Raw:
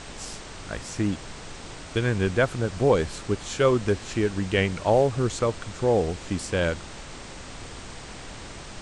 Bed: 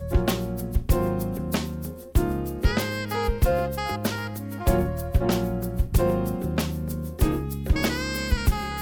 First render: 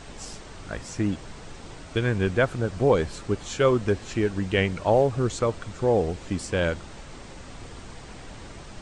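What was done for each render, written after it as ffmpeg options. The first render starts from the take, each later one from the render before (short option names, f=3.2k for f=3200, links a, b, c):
-af "afftdn=nr=6:nf=-41"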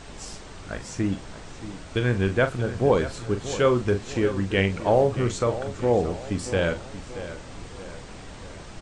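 -filter_complex "[0:a]asplit=2[a][b];[b]adelay=41,volume=-10dB[c];[a][c]amix=inputs=2:normalize=0,asplit=2[d][e];[e]adelay=629,lowpass=f=4.8k:p=1,volume=-13dB,asplit=2[f][g];[g]adelay=629,lowpass=f=4.8k:p=1,volume=0.46,asplit=2[h][i];[i]adelay=629,lowpass=f=4.8k:p=1,volume=0.46,asplit=2[j][k];[k]adelay=629,lowpass=f=4.8k:p=1,volume=0.46,asplit=2[l][m];[m]adelay=629,lowpass=f=4.8k:p=1,volume=0.46[n];[d][f][h][j][l][n]amix=inputs=6:normalize=0"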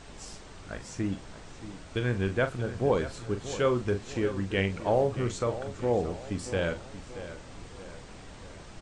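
-af "volume=-5.5dB"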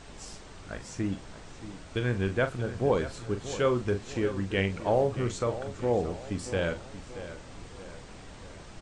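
-af anull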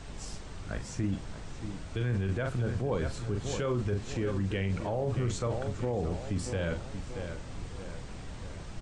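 -filter_complex "[0:a]acrossover=split=190[a][b];[a]acontrast=74[c];[c][b]amix=inputs=2:normalize=0,alimiter=limit=-22.5dB:level=0:latency=1:release=14"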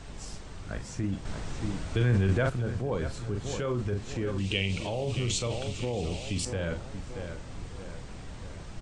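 -filter_complex "[0:a]asettb=1/sr,asplit=3[a][b][c];[a]atrim=end=1.254[d];[b]atrim=start=1.25:end=2.5,asetpts=PTS-STARTPTS,afade=t=in:d=0.004:c=qsin,afade=t=out:st=1.246:d=0.004:c=qsin,acontrast=53[e];[c]atrim=start=2.496[f];[d][e]acrossfade=d=0.004:c1=hsin:c2=qsin[g];[g][f]acrossfade=d=0.004:c1=qsin:c2=hsin,asettb=1/sr,asplit=3[h][i][j];[h]atrim=end=4.384[k];[i]atrim=start=4.38:end=6.45,asetpts=PTS-STARTPTS,afade=t=in:d=0.004:c=qsin,afade=t=out:st=2.066:d=0.004:c=qsin,highshelf=f=2.1k:t=q:w=3:g=8.5[l];[j]atrim=start=6.446[m];[k][l]acrossfade=d=0.004:c1=hsin:c2=qsin[n];[n][m]acrossfade=d=0.004:c1=qsin:c2=hsin"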